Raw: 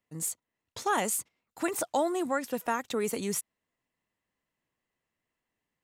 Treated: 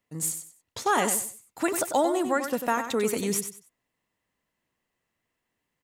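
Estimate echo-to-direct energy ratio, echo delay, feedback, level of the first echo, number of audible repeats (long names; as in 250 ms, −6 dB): −8.0 dB, 95 ms, 25%, −8.5 dB, 3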